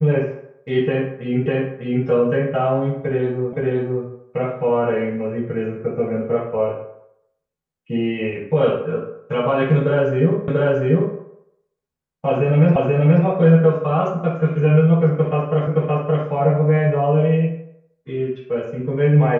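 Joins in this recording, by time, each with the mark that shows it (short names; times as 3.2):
1.46 repeat of the last 0.6 s
3.53 repeat of the last 0.52 s
10.48 repeat of the last 0.69 s
12.76 repeat of the last 0.48 s
15.67 repeat of the last 0.57 s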